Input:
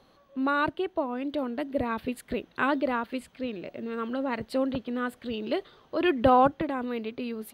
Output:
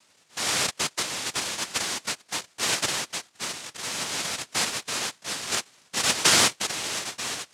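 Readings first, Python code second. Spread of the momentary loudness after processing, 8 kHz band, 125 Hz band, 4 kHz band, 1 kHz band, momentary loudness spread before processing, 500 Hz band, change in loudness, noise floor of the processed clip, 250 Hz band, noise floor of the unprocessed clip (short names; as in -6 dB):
12 LU, +31.5 dB, +0.5 dB, +17.5 dB, -5.0 dB, 12 LU, -9.0 dB, +3.0 dB, -62 dBFS, -11.5 dB, -61 dBFS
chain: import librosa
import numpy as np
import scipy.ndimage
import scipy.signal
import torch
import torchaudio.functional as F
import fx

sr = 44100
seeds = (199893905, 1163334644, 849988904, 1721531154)

y = fx.wiener(x, sr, points=9)
y = fx.doubler(y, sr, ms=13.0, db=-12)
y = fx.noise_vocoder(y, sr, seeds[0], bands=1)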